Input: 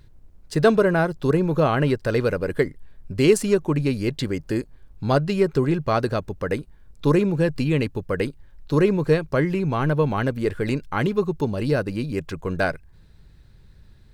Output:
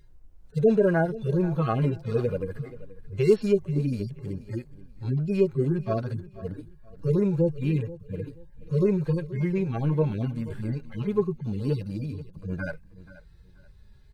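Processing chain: median-filter separation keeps harmonic; feedback echo 0.481 s, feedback 27%, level -17.5 dB; gain -2 dB

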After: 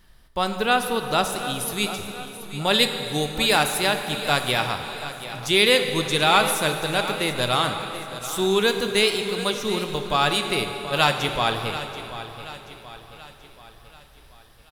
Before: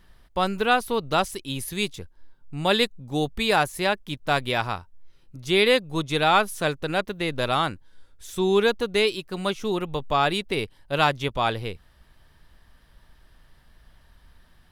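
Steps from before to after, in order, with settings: high shelf 3400 Hz +6.5 dB, from 2.74 s +11.5 dB; feedback echo 0.732 s, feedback 49%, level -13.5 dB; plate-style reverb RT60 3.2 s, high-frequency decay 0.75×, DRR 6 dB; gain -1 dB

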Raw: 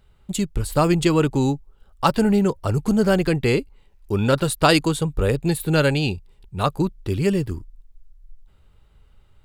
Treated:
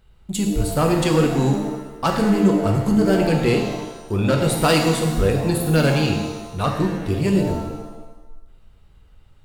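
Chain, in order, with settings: soft clip -12 dBFS, distortion -16 dB; shimmer reverb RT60 1.1 s, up +7 st, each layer -8 dB, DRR 2 dB

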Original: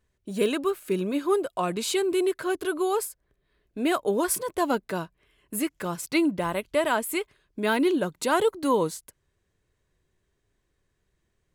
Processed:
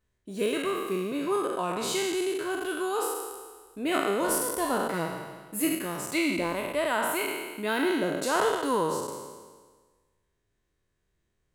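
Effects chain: spectral trails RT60 1.48 s; 4.93–5.75 comb 6.2 ms, depth 84%; gain -6 dB

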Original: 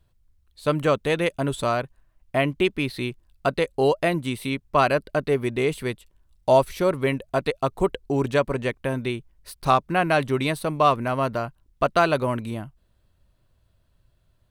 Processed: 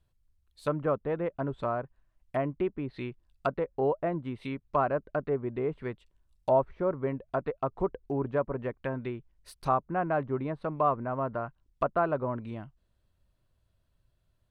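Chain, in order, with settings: treble ducked by the level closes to 860 Hz, closed at -20.5 dBFS; dynamic EQ 1400 Hz, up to +7 dB, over -38 dBFS, Q 0.89; gain -8 dB

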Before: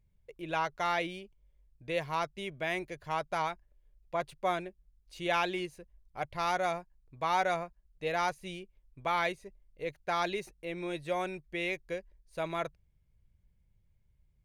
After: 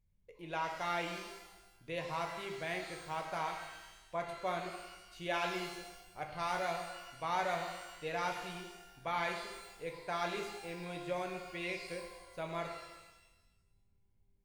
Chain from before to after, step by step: shimmer reverb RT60 1.1 s, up +12 st, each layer -8 dB, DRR 2.5 dB; gain -7 dB

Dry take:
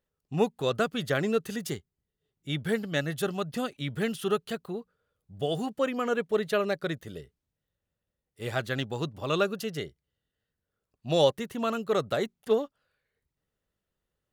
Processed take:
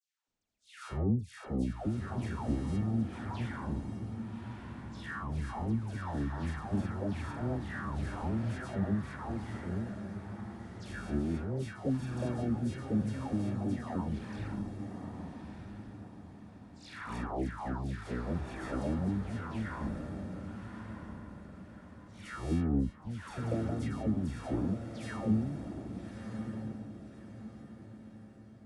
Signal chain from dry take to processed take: spectral contrast lowered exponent 0.59; treble ducked by the level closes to 430 Hz, closed at -22 dBFS; in parallel at -10.5 dB: sample-and-hold 22×; on the sum: dispersion lows, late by 0.142 s, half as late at 2500 Hz; on a send: diffused feedback echo 0.61 s, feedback 41%, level -7 dB; on the sum: speed mistake 15 ips tape played at 7.5 ips; gain -4.5 dB

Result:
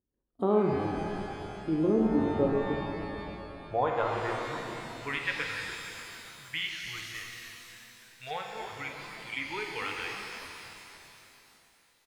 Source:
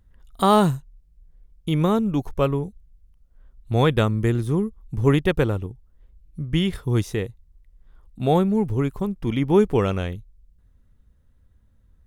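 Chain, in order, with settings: band-pass sweep 350 Hz -> 2200 Hz, 2.96–4.98; in parallel at +2 dB: compressor, threshold -35 dBFS, peak gain reduction 14.5 dB; on the sum: spectral noise reduction 15 dB; 6.84–8.31 hard clip -34.5 dBFS, distortion -23 dB; on a send: frequency-shifting echo 0.294 s, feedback 53%, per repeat -110 Hz, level -11 dB; on the sum: shimmer reverb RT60 2.9 s, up +12 st, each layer -8 dB, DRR 1 dB; gain -4 dB

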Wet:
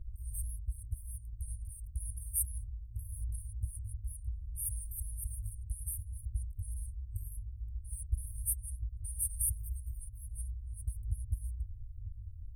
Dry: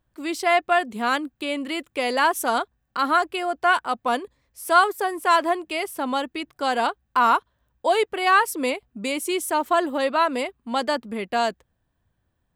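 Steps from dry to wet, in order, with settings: FFT band-reject 110–8500 Hz; RIAA curve playback; gain +14 dB

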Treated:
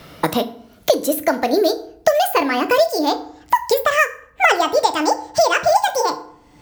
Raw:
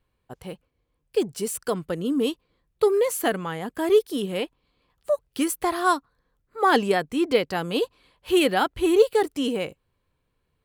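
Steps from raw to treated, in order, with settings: speed glide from 125% -> 197%; FDN reverb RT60 0.46 s, low-frequency decay 1.2×, high-frequency decay 0.7×, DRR 7.5 dB; three-band squash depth 100%; gain +5.5 dB

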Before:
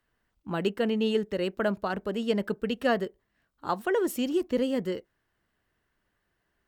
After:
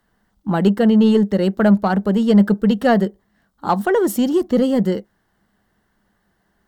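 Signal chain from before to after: thirty-one-band EQ 200 Hz +12 dB, 800 Hz +6 dB, 2500 Hz -11 dB; in parallel at -5 dB: soft clip -23 dBFS, distortion -10 dB; on the sum: gain +6 dB

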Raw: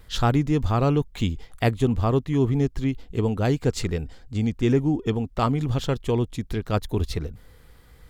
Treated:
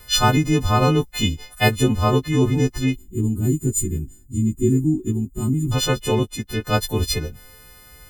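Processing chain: frequency quantiser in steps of 3 st; 2.96–5.72 spectral gain 410–6500 Hz -24 dB; 6.23–6.67 upward expander 1.5:1, over -43 dBFS; gain +4 dB

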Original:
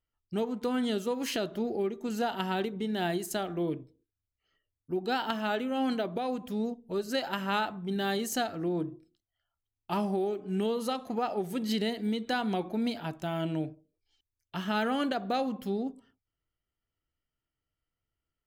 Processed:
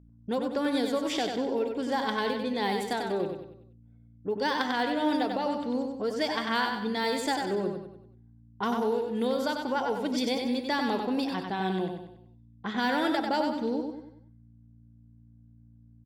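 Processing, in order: low-pass opened by the level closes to 630 Hz, open at -26 dBFS; hum 50 Hz, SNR 26 dB; in parallel at +3 dB: compressor, threshold -45 dBFS, peak gain reduction 18.5 dB; on the sum: varispeed +15%; low shelf 130 Hz -6 dB; on a send: feedback echo 95 ms, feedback 43%, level -5 dB

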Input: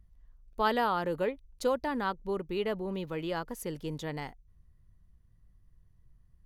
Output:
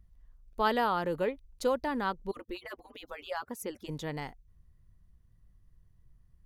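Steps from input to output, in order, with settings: 2.31–3.89 median-filter separation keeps percussive

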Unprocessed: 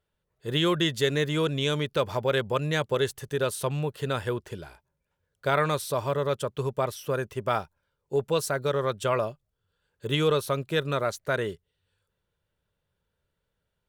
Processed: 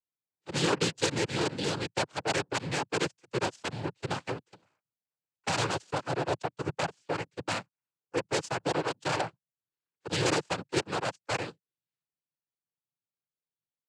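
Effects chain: wrapped overs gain 16 dB; added harmonics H 7 -16 dB, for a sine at -16 dBFS; noise vocoder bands 8; gain -3.5 dB

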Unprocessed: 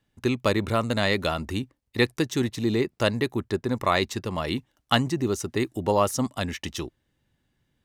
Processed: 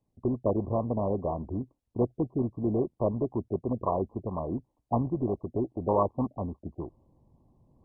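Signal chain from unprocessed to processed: reverse; upward compressor, threshold -45 dBFS; reverse; gain -3.5 dB; MP2 8 kbps 24000 Hz

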